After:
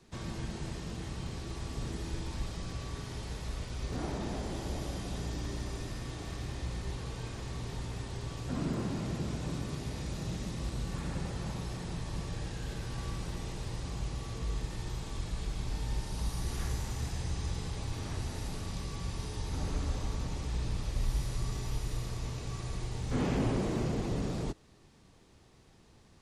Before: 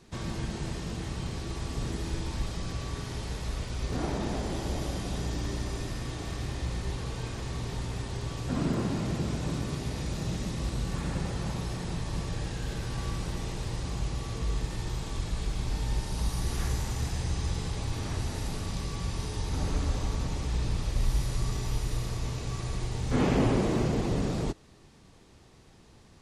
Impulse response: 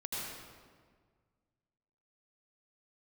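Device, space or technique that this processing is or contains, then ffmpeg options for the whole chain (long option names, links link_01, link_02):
one-band saturation: -filter_complex "[0:a]acrossover=split=230|4000[link_01][link_02][link_03];[link_02]asoftclip=type=tanh:threshold=-24.5dB[link_04];[link_01][link_04][link_03]amix=inputs=3:normalize=0,volume=-4.5dB"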